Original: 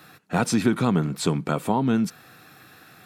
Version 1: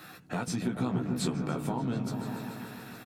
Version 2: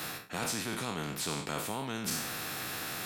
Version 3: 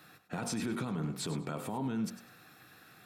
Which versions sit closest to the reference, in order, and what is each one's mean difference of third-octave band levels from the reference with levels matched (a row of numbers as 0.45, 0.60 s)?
3, 1, 2; 5.0, 8.0, 15.5 dB